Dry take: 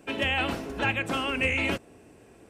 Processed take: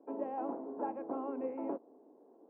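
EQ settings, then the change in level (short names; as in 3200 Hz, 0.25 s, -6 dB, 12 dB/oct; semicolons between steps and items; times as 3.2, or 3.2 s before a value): elliptic band-pass 260–960 Hz, stop band 70 dB; -5.5 dB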